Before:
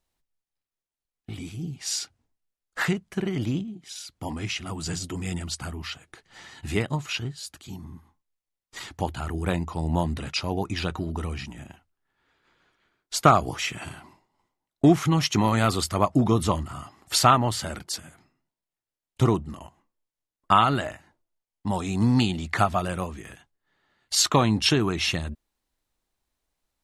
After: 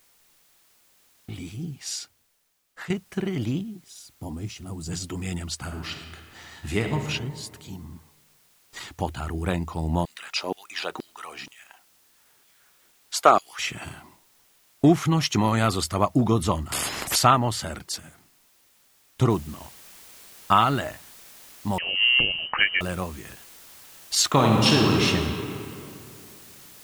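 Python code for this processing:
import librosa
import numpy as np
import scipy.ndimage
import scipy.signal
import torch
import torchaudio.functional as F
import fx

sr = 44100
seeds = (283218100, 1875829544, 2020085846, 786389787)

y = fx.peak_eq(x, sr, hz=2100.0, db=-14.5, octaves=2.7, at=(3.82, 4.91), fade=0.02)
y = fx.reverb_throw(y, sr, start_s=5.6, length_s=1.4, rt60_s=1.8, drr_db=4.0)
y = fx.filter_lfo_highpass(y, sr, shape='saw_down', hz=2.1, low_hz=260.0, high_hz=4100.0, q=1.4, at=(10.05, 13.59))
y = fx.spectral_comp(y, sr, ratio=10.0, at=(16.72, 17.16))
y = fx.noise_floor_step(y, sr, seeds[0], at_s=19.3, before_db=-61, after_db=-48, tilt_db=0.0)
y = fx.freq_invert(y, sr, carrier_hz=3000, at=(21.78, 22.81))
y = fx.reverb_throw(y, sr, start_s=24.29, length_s=0.76, rt60_s=2.7, drr_db=-1.0)
y = fx.edit(y, sr, fx.fade_out_to(start_s=1.63, length_s=1.27, curve='qua', floor_db=-12.5), tone=tone)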